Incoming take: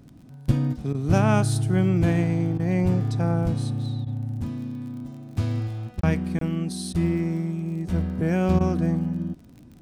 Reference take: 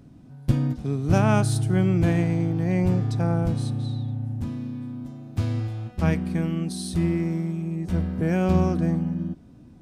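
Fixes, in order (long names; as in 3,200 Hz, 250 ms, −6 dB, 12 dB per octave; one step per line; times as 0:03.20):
click removal
repair the gap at 0:06.01/0:06.39, 23 ms
repair the gap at 0:00.93/0:02.58/0:04.05/0:06.00/0:06.93/0:08.59, 14 ms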